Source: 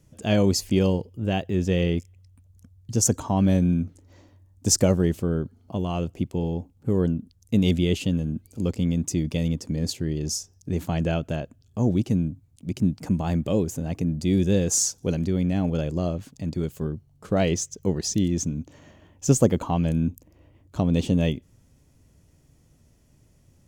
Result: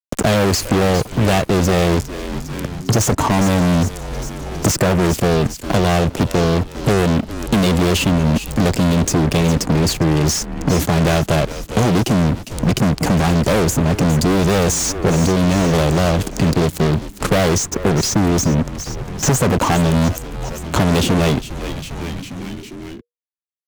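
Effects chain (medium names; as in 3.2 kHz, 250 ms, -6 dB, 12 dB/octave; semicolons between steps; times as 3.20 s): fuzz box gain 36 dB, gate -44 dBFS; frequency-shifting echo 404 ms, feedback 45%, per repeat -120 Hz, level -16.5 dB; three bands compressed up and down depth 70%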